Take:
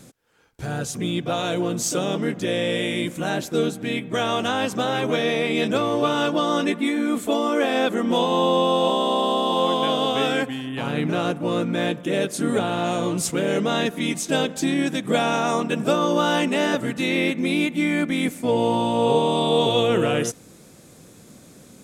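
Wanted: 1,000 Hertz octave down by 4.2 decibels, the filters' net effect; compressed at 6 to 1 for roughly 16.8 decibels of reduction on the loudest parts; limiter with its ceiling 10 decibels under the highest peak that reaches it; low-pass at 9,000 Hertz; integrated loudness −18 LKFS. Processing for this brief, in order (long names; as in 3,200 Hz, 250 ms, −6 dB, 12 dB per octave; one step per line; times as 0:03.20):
low-pass filter 9,000 Hz
parametric band 1,000 Hz −5.5 dB
downward compressor 6 to 1, threshold −36 dBFS
level +24.5 dB
brickwall limiter −9 dBFS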